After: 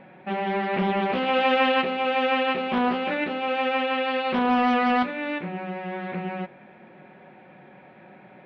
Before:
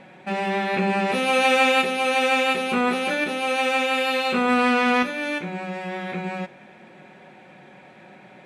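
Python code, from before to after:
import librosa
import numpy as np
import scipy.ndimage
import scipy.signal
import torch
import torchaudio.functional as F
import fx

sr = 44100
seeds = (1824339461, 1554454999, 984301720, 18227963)

y = scipy.ndimage.gaussian_filter1d(x, 2.8, mode='constant')
y = fx.doppler_dist(y, sr, depth_ms=0.36)
y = F.gain(torch.from_numpy(y), -1.0).numpy()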